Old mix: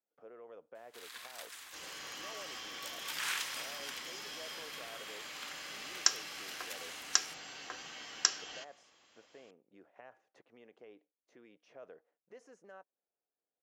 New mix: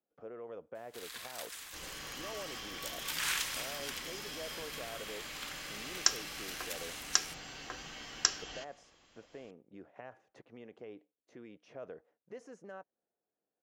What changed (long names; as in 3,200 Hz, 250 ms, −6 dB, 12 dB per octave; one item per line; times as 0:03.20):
speech +4.0 dB
first sound: add spectral tilt +1.5 dB per octave
master: remove high-pass filter 430 Hz 6 dB per octave